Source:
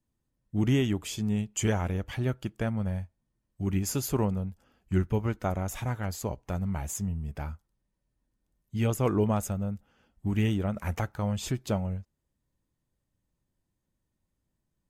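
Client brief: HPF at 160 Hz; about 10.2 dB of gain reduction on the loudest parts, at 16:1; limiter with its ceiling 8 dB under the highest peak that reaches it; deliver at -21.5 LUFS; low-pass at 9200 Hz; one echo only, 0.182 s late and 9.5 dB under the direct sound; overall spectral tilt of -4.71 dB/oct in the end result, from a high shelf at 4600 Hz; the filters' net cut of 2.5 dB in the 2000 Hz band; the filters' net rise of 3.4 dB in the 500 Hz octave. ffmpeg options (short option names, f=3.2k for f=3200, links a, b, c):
-af "highpass=160,lowpass=9.2k,equalizer=f=500:t=o:g=4.5,equalizer=f=2k:t=o:g=-5,highshelf=f=4.6k:g=7.5,acompressor=threshold=-29dB:ratio=16,alimiter=level_in=0.5dB:limit=-24dB:level=0:latency=1,volume=-0.5dB,aecho=1:1:182:0.335,volume=15.5dB"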